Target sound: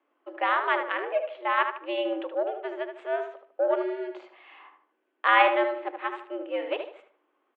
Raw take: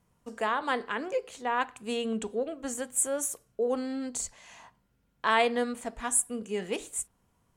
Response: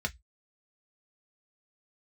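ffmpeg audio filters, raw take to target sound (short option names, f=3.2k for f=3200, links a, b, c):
-filter_complex "[0:a]aeval=exprs='0.266*(cos(1*acos(clip(val(0)/0.266,-1,1)))-cos(1*PI/2))+0.0133*(cos(7*acos(clip(val(0)/0.266,-1,1)))-cos(7*PI/2))':c=same,highpass=f=220:t=q:w=0.5412,highpass=f=220:t=q:w=1.307,lowpass=f=3k:t=q:w=0.5176,lowpass=f=3k:t=q:w=0.7071,lowpass=f=3k:t=q:w=1.932,afreqshift=110,asplit=2[a][b];[b]adelay=76,lowpass=f=2.2k:p=1,volume=-6dB,asplit=2[c][d];[d]adelay=76,lowpass=f=2.2k:p=1,volume=0.38,asplit=2[e][f];[f]adelay=76,lowpass=f=2.2k:p=1,volume=0.38,asplit=2[g][h];[h]adelay=76,lowpass=f=2.2k:p=1,volume=0.38,asplit=2[i][j];[j]adelay=76,lowpass=f=2.2k:p=1,volume=0.38[k];[a][c][e][g][i][k]amix=inputs=6:normalize=0,volume=5dB"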